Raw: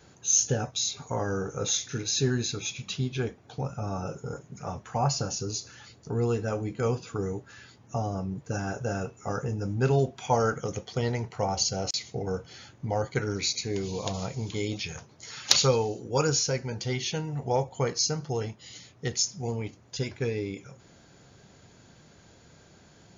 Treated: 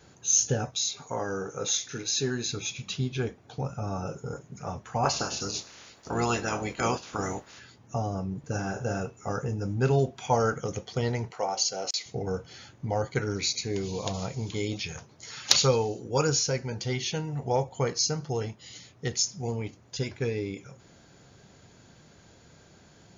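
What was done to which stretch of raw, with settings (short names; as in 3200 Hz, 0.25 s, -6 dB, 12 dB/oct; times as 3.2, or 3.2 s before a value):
0.75–2.46 HPF 260 Hz 6 dB/oct
5.03–7.58 spectral limiter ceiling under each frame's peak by 21 dB
8.38–9.01 flutter echo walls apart 9.7 m, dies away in 0.34 s
11.32–12.06 HPF 380 Hz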